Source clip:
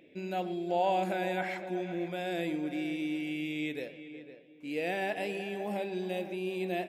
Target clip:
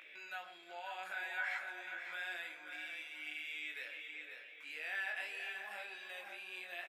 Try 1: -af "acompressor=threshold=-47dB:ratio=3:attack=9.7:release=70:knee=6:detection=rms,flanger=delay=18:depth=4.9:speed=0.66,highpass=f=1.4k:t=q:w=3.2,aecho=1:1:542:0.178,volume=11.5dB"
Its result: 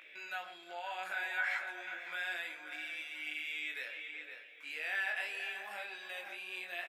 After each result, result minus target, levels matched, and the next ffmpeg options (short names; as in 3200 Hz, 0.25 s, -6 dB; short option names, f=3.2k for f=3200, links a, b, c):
compressor: peak gain reduction -4.5 dB; echo-to-direct -6.5 dB
-af "acompressor=threshold=-53.5dB:ratio=3:attack=9.7:release=70:knee=6:detection=rms,flanger=delay=18:depth=4.9:speed=0.66,highpass=f=1.4k:t=q:w=3.2,aecho=1:1:542:0.178,volume=11.5dB"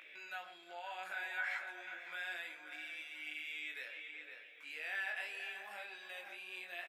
echo-to-direct -6.5 dB
-af "acompressor=threshold=-53.5dB:ratio=3:attack=9.7:release=70:knee=6:detection=rms,flanger=delay=18:depth=4.9:speed=0.66,highpass=f=1.4k:t=q:w=3.2,aecho=1:1:542:0.376,volume=11.5dB"